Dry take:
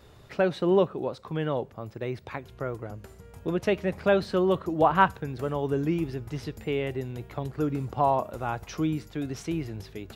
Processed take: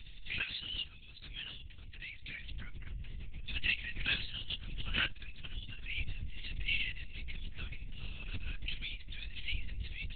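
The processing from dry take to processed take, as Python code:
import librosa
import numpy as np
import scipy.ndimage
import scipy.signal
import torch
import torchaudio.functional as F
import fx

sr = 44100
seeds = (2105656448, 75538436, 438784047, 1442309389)

p1 = scipy.signal.sosfilt(scipy.signal.cheby2(4, 60, [190.0, 960.0], 'bandstop', fs=sr, output='sos'), x)
p2 = fx.level_steps(p1, sr, step_db=22)
p3 = p1 + (p2 * 10.0 ** (-2.0 / 20.0))
p4 = fx.air_absorb(p3, sr, metres=310.0)
p5 = fx.doubler(p4, sr, ms=20.0, db=-10.0)
p6 = fx.lpc_vocoder(p5, sr, seeds[0], excitation='whisper', order=8)
p7 = fx.pre_swell(p6, sr, db_per_s=45.0)
y = p7 * 10.0 ** (9.0 / 20.0)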